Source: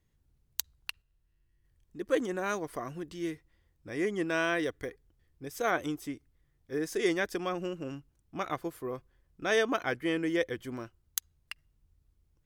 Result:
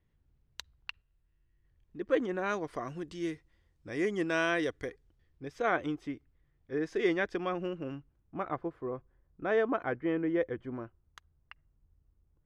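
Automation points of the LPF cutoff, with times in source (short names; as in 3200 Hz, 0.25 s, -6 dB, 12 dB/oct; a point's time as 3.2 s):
2.28 s 3000 Hz
3.03 s 7700 Hz
4.89 s 7700 Hz
5.6 s 3000 Hz
7.87 s 3000 Hz
8.45 s 1400 Hz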